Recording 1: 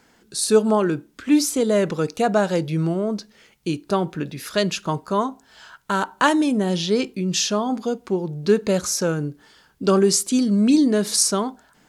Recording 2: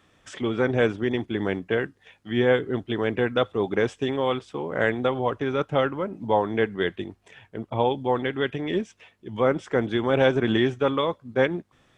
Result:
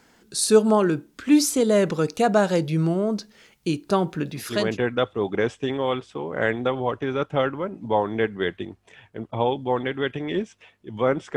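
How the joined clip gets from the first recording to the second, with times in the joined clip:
recording 1
4.56 s: go over to recording 2 from 2.95 s, crossfade 0.44 s equal-power

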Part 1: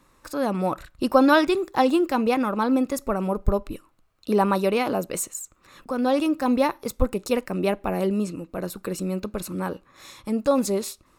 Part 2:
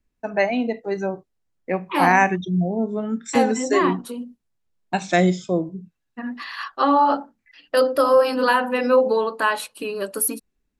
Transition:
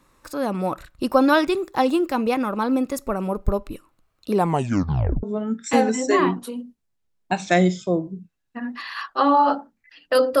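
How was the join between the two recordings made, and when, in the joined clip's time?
part 1
4.34 s: tape stop 0.89 s
5.23 s: go over to part 2 from 2.85 s

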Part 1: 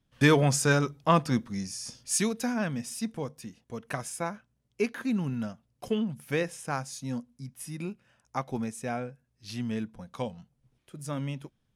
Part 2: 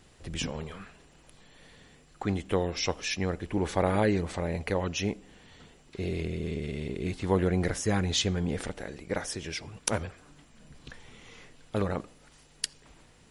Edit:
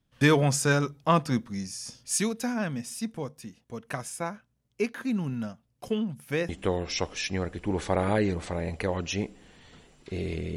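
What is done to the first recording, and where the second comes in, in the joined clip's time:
part 1
6.49 s: go over to part 2 from 2.36 s

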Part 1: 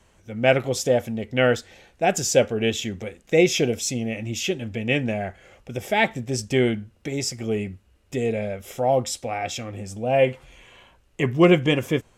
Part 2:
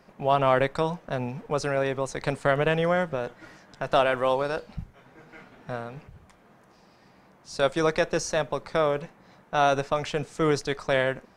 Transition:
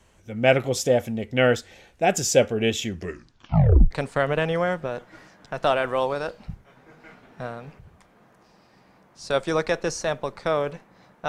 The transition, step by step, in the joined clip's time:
part 1
2.89 s: tape stop 1.02 s
3.91 s: go over to part 2 from 2.20 s

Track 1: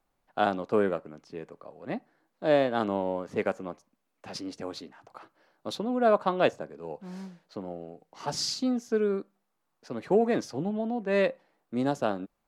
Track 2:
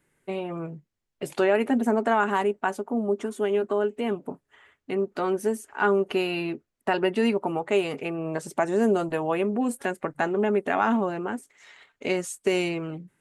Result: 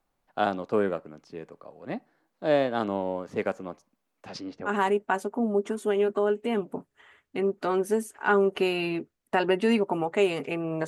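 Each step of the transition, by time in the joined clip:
track 1
4.27–4.71 s: low-pass 8.2 kHz -> 1.6 kHz
4.68 s: go over to track 2 from 2.22 s, crossfade 0.06 s

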